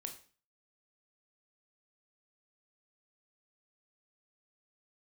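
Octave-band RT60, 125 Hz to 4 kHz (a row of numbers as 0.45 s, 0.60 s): 0.50 s, 0.45 s, 0.40 s, 0.40 s, 0.40 s, 0.40 s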